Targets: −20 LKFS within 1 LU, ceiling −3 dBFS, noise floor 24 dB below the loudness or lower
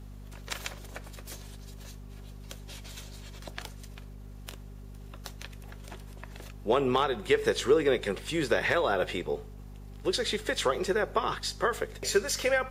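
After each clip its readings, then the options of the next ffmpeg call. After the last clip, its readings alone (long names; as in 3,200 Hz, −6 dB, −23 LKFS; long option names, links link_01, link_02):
mains hum 50 Hz; hum harmonics up to 250 Hz; level of the hum −42 dBFS; integrated loudness −29.0 LKFS; sample peak −13.0 dBFS; target loudness −20.0 LKFS
→ -af "bandreject=frequency=50:width_type=h:width=6,bandreject=frequency=100:width_type=h:width=6,bandreject=frequency=150:width_type=h:width=6,bandreject=frequency=200:width_type=h:width=6,bandreject=frequency=250:width_type=h:width=6"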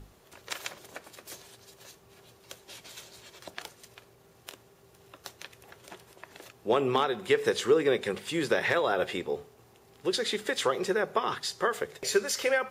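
mains hum none found; integrated loudness −29.0 LKFS; sample peak −12.5 dBFS; target loudness −20.0 LKFS
→ -af "volume=9dB"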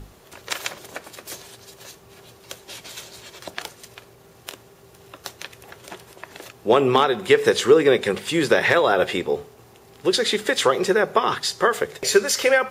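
integrated loudness −20.0 LKFS; sample peak −3.5 dBFS; background noise floor −50 dBFS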